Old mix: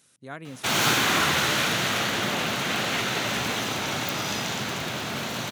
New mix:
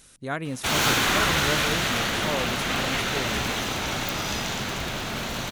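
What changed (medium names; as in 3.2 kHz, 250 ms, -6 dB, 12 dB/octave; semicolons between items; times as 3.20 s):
speech +8.5 dB; master: remove high-pass 100 Hz 24 dB/octave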